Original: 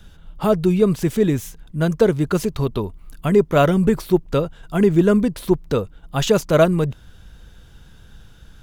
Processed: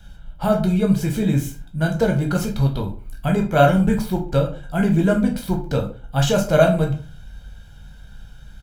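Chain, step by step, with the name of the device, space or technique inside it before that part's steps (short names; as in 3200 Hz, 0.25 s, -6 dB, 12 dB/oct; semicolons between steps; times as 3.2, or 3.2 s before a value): microphone above a desk (comb 1.3 ms, depth 61%; reverb RT60 0.40 s, pre-delay 10 ms, DRR 1 dB); gain -3.5 dB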